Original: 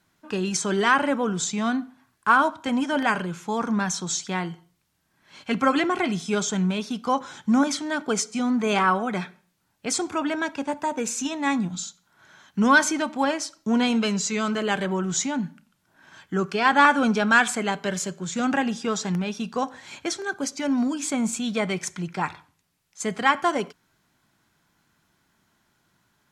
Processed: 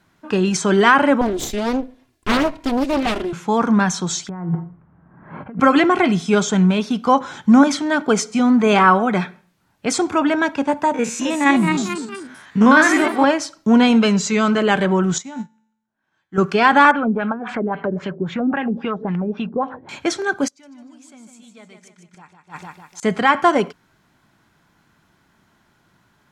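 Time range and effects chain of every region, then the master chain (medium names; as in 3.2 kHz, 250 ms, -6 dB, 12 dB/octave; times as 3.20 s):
1.21–3.33 s: comb filter that takes the minimum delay 2.9 ms + peaking EQ 1.3 kHz -13 dB 1.2 oct + loudspeaker Doppler distortion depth 0.58 ms
4.29–5.60 s: low-pass 1.4 kHz 24 dB/octave + compressor with a negative ratio -40 dBFS + peaking EQ 160 Hz +8 dB 0.76 oct
10.94–13.24 s: spectrogram pixelated in time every 50 ms + ever faster or slower copies 272 ms, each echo +2 st, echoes 3, each echo -6 dB + peaking EQ 2.1 kHz +4.5 dB 0.96 oct
15.18–16.38 s: feedback comb 110 Hz, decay 0.93 s, mix 70% + upward expansion 2.5:1, over -45 dBFS
16.91–19.89 s: treble shelf 4.3 kHz -8.5 dB + compression 3:1, threshold -30 dBFS + LFO low-pass sine 3.7 Hz 320–3100 Hz
20.48–23.03 s: treble shelf 3.3 kHz +10 dB + feedback delay 151 ms, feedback 44%, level -6.5 dB + inverted gate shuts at -23 dBFS, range -29 dB
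whole clip: treble shelf 3.9 kHz -9 dB; loudness maximiser +10 dB; trim -1 dB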